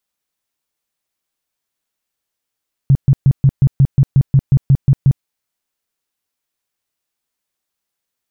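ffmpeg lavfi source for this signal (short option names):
-f lavfi -i "aevalsrc='0.531*sin(2*PI*136*mod(t,0.18))*lt(mod(t,0.18),7/136)':d=2.34:s=44100"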